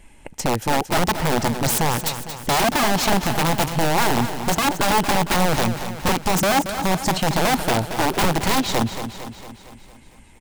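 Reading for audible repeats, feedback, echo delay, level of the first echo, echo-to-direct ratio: 6, 57%, 228 ms, −10.0 dB, −8.5 dB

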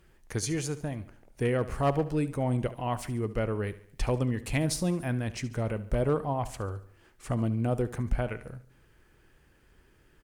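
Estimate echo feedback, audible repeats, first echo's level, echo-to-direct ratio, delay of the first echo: 48%, 3, −16.0 dB, −15.0 dB, 71 ms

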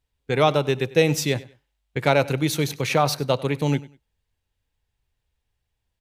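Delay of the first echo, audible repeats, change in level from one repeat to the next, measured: 97 ms, 2, −12.0 dB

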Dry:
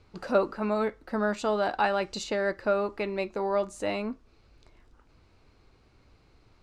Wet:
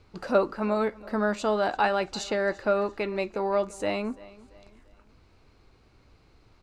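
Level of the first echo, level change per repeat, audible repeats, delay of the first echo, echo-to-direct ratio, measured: −21.0 dB, −7.5 dB, 2, 341 ms, −20.0 dB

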